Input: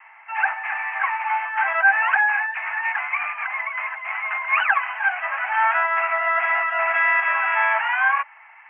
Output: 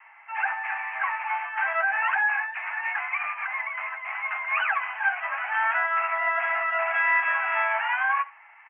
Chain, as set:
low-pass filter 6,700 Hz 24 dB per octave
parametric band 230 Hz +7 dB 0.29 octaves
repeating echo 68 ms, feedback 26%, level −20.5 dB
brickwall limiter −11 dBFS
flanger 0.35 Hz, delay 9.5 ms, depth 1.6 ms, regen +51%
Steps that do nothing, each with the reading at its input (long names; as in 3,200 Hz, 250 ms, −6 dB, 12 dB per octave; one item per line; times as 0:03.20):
low-pass filter 6,700 Hz: nothing at its input above 3,000 Hz
parametric band 230 Hz: nothing at its input below 570 Hz